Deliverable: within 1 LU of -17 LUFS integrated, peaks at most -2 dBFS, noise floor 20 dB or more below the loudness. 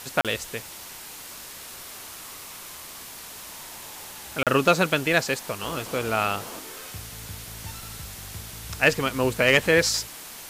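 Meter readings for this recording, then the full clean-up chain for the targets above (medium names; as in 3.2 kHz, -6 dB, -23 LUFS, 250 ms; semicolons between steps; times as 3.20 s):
dropouts 2; longest dropout 37 ms; noise floor -41 dBFS; noise floor target -44 dBFS; loudness -23.5 LUFS; peak level -7.0 dBFS; loudness target -17.0 LUFS
-> interpolate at 0.21/4.43 s, 37 ms; noise reduction 6 dB, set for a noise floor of -41 dBFS; trim +6.5 dB; peak limiter -2 dBFS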